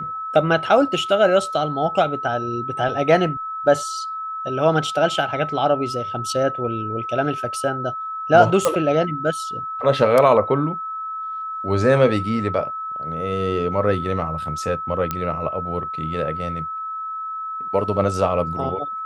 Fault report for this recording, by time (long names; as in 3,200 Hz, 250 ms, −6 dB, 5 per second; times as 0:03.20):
whistle 1,300 Hz −26 dBFS
0:08.65: click −4 dBFS
0:15.11: click −9 dBFS